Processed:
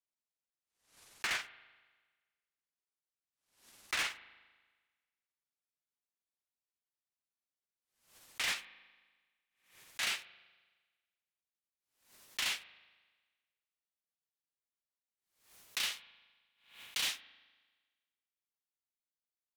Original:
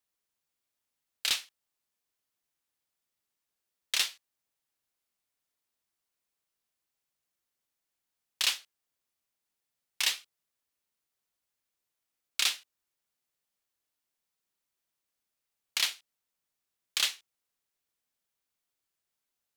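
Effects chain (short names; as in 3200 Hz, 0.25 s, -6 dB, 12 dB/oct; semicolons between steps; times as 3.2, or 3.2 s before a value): gliding pitch shift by -10.5 st ending unshifted; limiter -20 dBFS, peak gain reduction 7 dB; sample leveller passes 3; spring tank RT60 1.4 s, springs 38 ms, chirp 40 ms, DRR 16 dB; backwards sustainer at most 110 dB/s; gain -8 dB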